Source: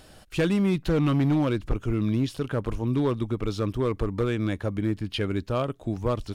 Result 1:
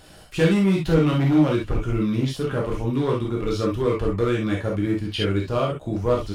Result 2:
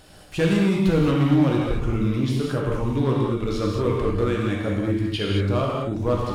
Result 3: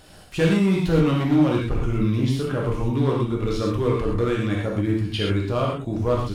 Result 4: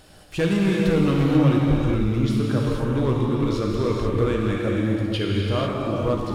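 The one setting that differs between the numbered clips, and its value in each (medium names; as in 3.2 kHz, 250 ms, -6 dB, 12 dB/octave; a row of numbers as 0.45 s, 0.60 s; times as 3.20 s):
gated-style reverb, gate: 90 ms, 250 ms, 150 ms, 520 ms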